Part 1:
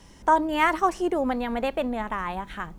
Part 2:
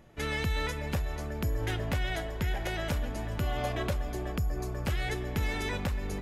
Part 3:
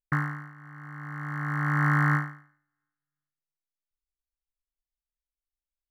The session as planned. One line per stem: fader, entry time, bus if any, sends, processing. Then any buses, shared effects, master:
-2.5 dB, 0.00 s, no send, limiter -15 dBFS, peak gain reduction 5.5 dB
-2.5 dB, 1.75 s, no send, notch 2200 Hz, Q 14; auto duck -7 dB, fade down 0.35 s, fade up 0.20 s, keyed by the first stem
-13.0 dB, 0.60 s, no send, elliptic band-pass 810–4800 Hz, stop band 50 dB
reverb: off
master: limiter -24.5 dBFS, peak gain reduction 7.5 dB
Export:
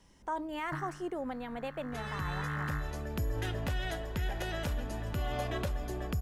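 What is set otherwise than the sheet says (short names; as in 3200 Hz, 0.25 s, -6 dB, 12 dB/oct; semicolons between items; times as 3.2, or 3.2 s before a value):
stem 1 -2.5 dB -> -12.0 dB; stem 3: missing elliptic band-pass 810–4800 Hz, stop band 50 dB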